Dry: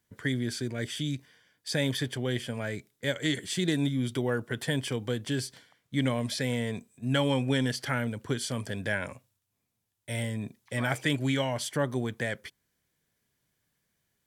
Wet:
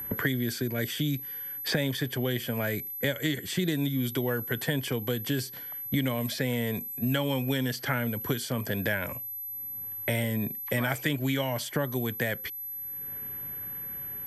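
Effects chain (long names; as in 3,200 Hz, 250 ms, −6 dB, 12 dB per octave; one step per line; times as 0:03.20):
steady tone 12,000 Hz −41 dBFS
multiband upward and downward compressor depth 100%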